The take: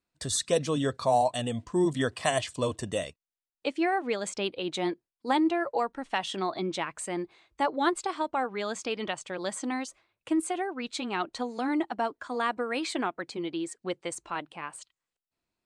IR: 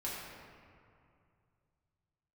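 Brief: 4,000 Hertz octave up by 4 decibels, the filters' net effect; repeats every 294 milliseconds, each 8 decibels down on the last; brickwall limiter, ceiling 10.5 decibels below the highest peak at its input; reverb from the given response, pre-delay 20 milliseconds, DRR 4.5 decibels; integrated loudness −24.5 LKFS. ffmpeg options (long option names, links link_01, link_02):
-filter_complex "[0:a]equalizer=frequency=4000:width_type=o:gain=5,alimiter=limit=-20.5dB:level=0:latency=1,aecho=1:1:294|588|882|1176|1470:0.398|0.159|0.0637|0.0255|0.0102,asplit=2[link_01][link_02];[1:a]atrim=start_sample=2205,adelay=20[link_03];[link_02][link_03]afir=irnorm=-1:irlink=0,volume=-7dB[link_04];[link_01][link_04]amix=inputs=2:normalize=0,volume=5.5dB"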